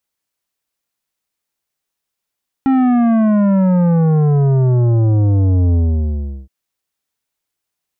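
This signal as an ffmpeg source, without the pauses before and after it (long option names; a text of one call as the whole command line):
ffmpeg -f lavfi -i "aevalsrc='0.282*clip((3.82-t)/0.74,0,1)*tanh(3.55*sin(2*PI*270*3.82/log(65/270)*(exp(log(65/270)*t/3.82)-1)))/tanh(3.55)':duration=3.82:sample_rate=44100" out.wav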